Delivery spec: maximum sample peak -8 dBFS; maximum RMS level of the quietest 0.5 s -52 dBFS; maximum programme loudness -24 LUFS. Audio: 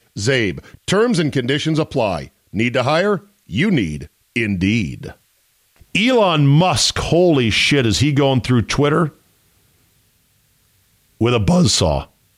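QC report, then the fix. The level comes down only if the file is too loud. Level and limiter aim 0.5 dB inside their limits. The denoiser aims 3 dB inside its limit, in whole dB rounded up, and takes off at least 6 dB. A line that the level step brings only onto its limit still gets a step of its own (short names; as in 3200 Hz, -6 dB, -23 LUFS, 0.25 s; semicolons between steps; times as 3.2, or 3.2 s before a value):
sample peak -5.5 dBFS: fail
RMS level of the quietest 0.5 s -60 dBFS: OK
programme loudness -16.5 LUFS: fail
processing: gain -8 dB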